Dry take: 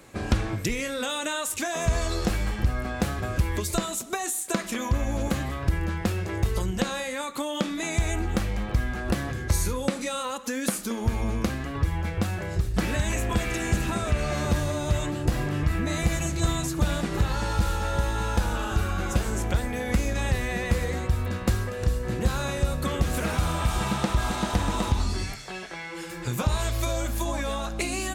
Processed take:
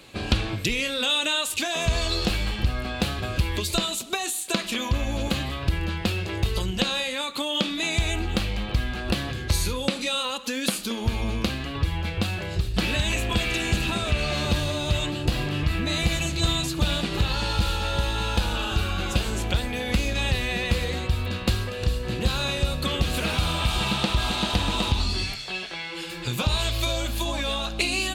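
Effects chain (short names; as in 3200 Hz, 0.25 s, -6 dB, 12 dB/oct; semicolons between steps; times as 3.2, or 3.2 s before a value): band shelf 3400 Hz +10.5 dB 1.1 oct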